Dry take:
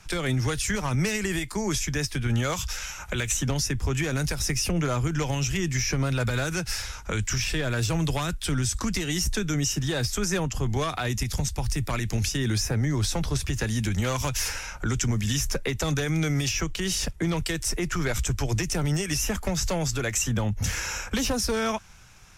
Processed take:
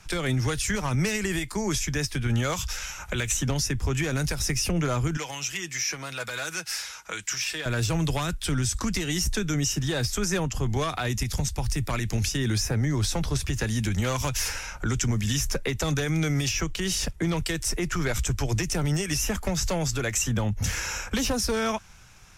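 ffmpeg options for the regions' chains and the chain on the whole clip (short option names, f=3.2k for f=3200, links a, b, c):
-filter_complex "[0:a]asettb=1/sr,asplit=3[a][b][c];[a]atrim=end=5.174[d];[b]atrim=start=5.17:end=7.66,asetpts=PTS-STARTPTS,afade=t=in:d=0.004:c=qsin,afade=t=out:st=2.486:d=0.004:c=qsin,highpass=f=1.1k:p=1,aecho=1:1:6.2:0.32,atrim=end_sample=109809[e];[c]atrim=start=7.656[f];[d][e]acrossfade=d=0.004:c1=hsin:c2=qsin[g];[g][f]acrossfade=d=0.004:c1=qsin:c2=hsin"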